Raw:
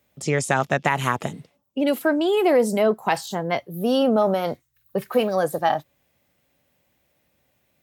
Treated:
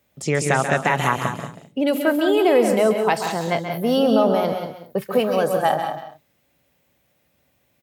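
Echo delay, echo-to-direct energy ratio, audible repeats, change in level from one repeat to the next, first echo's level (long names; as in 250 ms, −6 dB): 136 ms, −4.5 dB, 5, repeats not evenly spaced, −9.0 dB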